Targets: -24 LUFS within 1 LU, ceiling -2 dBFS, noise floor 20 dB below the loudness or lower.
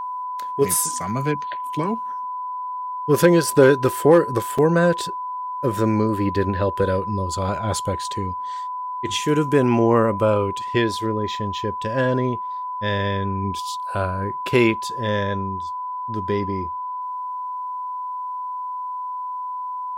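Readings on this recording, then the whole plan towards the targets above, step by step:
dropouts 1; longest dropout 5.0 ms; steady tone 1000 Hz; tone level -26 dBFS; loudness -22.0 LUFS; peak -3.0 dBFS; loudness target -24.0 LUFS
-> interpolate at 4.58, 5 ms; notch 1000 Hz, Q 30; gain -2 dB

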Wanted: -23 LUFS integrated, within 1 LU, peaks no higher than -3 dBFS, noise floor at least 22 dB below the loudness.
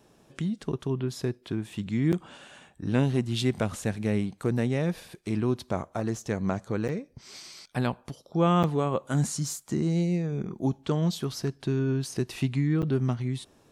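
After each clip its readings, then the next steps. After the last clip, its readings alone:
dropouts 4; longest dropout 8.0 ms; loudness -29.0 LUFS; peak -11.5 dBFS; loudness target -23.0 LUFS
-> interpolate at 2.12/6.88/8.63/12.82, 8 ms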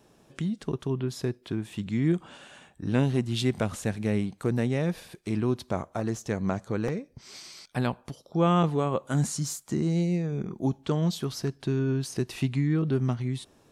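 dropouts 0; loudness -29.0 LUFS; peak -11.5 dBFS; loudness target -23.0 LUFS
-> gain +6 dB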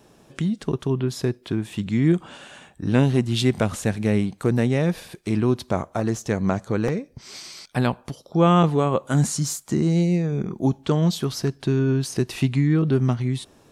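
loudness -23.0 LUFS; peak -5.5 dBFS; noise floor -55 dBFS

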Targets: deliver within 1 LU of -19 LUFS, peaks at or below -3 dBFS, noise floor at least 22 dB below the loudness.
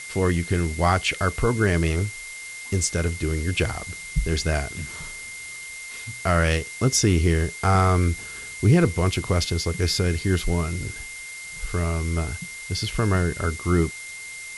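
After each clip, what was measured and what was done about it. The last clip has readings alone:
steady tone 2100 Hz; tone level -36 dBFS; noise floor -37 dBFS; noise floor target -46 dBFS; loudness -24.0 LUFS; peak -7.5 dBFS; loudness target -19.0 LUFS
-> notch 2100 Hz, Q 30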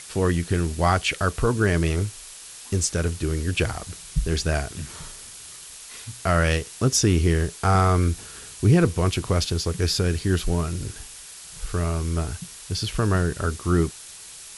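steady tone none; noise floor -42 dBFS; noise floor target -46 dBFS
-> denoiser 6 dB, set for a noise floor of -42 dBFS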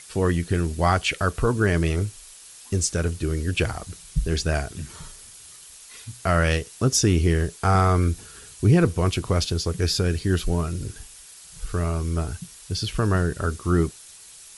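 noise floor -46 dBFS; loudness -23.5 LUFS; peak -8.0 dBFS; loudness target -19.0 LUFS
-> gain +4.5 dB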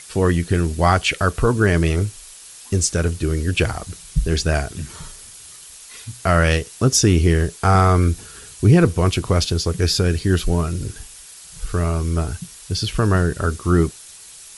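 loudness -19.0 LUFS; peak -3.5 dBFS; noise floor -41 dBFS

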